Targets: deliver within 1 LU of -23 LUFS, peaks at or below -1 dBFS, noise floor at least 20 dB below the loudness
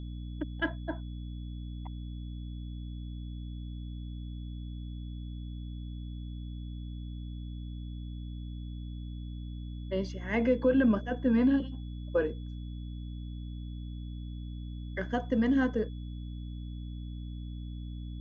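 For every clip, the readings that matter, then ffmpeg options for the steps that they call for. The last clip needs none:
hum 60 Hz; harmonics up to 300 Hz; hum level -37 dBFS; steady tone 3400 Hz; tone level -59 dBFS; loudness -35.0 LUFS; peak -15.5 dBFS; loudness target -23.0 LUFS
-> -af "bandreject=f=60:t=h:w=6,bandreject=f=120:t=h:w=6,bandreject=f=180:t=h:w=6,bandreject=f=240:t=h:w=6,bandreject=f=300:t=h:w=6"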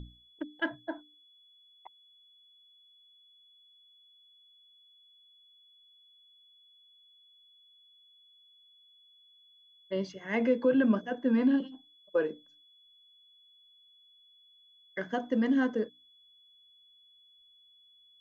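hum none; steady tone 3400 Hz; tone level -59 dBFS
-> -af "bandreject=f=3.4k:w=30"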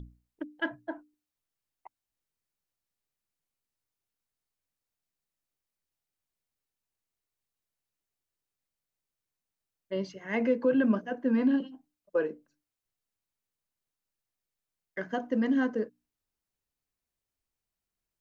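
steady tone none; loudness -30.0 LUFS; peak -15.5 dBFS; loudness target -23.0 LUFS
-> -af "volume=7dB"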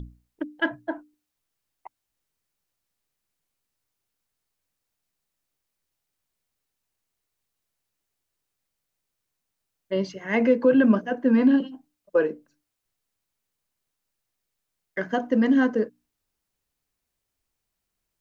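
loudness -23.0 LUFS; peak -8.5 dBFS; noise floor -82 dBFS

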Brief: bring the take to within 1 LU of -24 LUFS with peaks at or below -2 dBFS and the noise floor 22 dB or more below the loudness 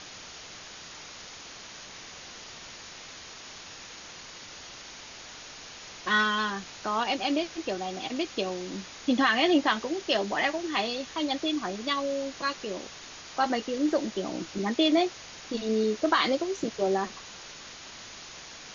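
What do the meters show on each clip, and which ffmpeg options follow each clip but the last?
noise floor -45 dBFS; noise floor target -51 dBFS; loudness -28.5 LUFS; peak -11.5 dBFS; loudness target -24.0 LUFS
-> -af "afftdn=nr=6:nf=-45"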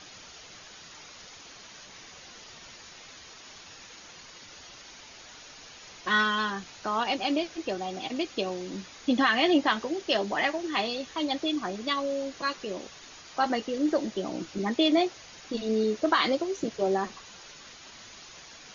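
noise floor -49 dBFS; noise floor target -51 dBFS
-> -af "afftdn=nr=6:nf=-49"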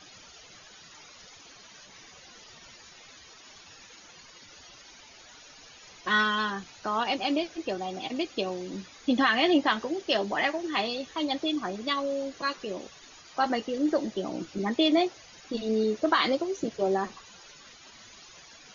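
noise floor -52 dBFS; loudness -28.5 LUFS; peak -11.5 dBFS; loudness target -24.0 LUFS
-> -af "volume=4.5dB"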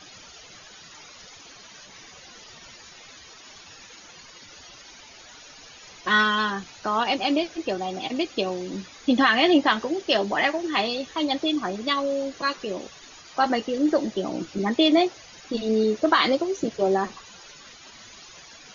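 loudness -24.0 LUFS; peak -7.0 dBFS; noise floor -47 dBFS

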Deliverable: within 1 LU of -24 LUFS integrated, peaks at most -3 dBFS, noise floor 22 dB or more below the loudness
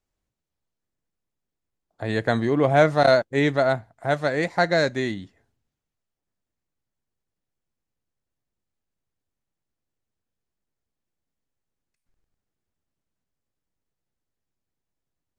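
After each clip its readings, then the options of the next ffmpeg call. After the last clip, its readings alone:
loudness -21.5 LUFS; peak -5.5 dBFS; loudness target -24.0 LUFS
-> -af "volume=-2.5dB"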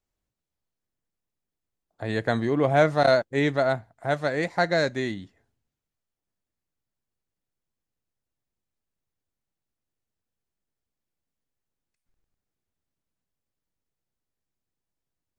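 loudness -24.0 LUFS; peak -8.0 dBFS; noise floor -87 dBFS

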